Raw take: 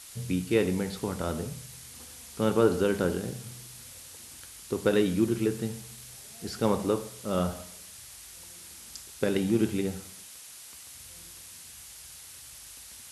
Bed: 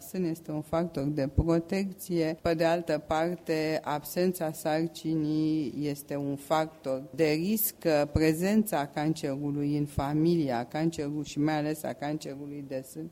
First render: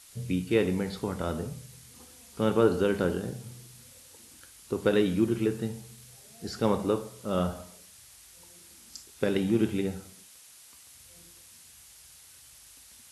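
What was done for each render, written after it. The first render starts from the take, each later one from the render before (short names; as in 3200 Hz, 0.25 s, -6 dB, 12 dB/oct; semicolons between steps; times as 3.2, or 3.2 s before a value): noise print and reduce 6 dB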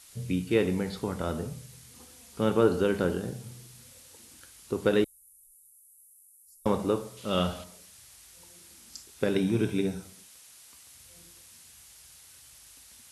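5.04–6.66 inverse Chebyshev band-stop 150–2100 Hz, stop band 80 dB; 7.17–7.64 bell 3100 Hz +11.5 dB 1.2 oct; 9.34–10.03 ripple EQ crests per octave 1.6, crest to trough 8 dB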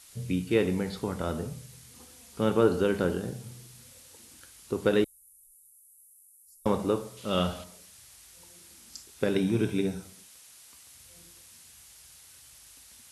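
nothing audible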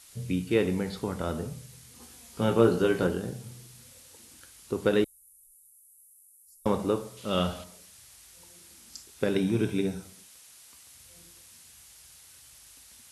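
2–3.07 doubler 17 ms -3.5 dB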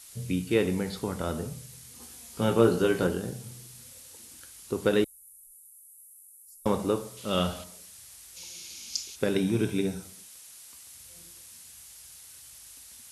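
8.36–9.15 spectral gain 2100–7100 Hz +11 dB; high shelf 5700 Hz +6 dB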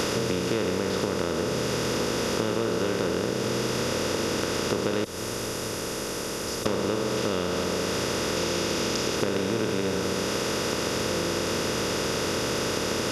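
per-bin compression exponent 0.2; compressor, threshold -23 dBFS, peak gain reduction 10.5 dB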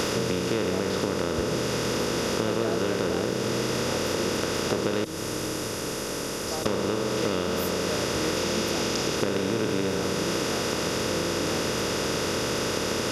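add bed -10.5 dB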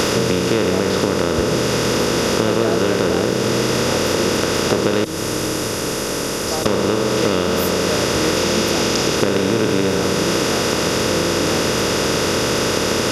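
gain +9 dB; limiter -2 dBFS, peak gain reduction 1 dB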